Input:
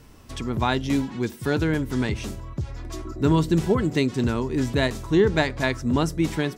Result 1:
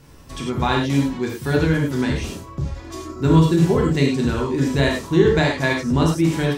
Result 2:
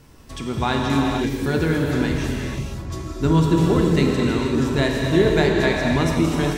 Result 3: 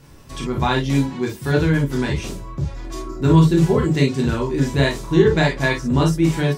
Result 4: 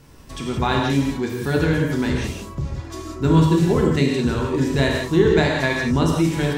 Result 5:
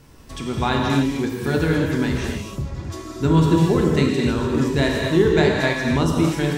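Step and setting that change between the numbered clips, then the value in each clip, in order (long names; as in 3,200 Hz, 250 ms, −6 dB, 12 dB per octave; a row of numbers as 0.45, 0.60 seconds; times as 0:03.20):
reverb whose tail is shaped and stops, gate: 130, 530, 80, 210, 320 milliseconds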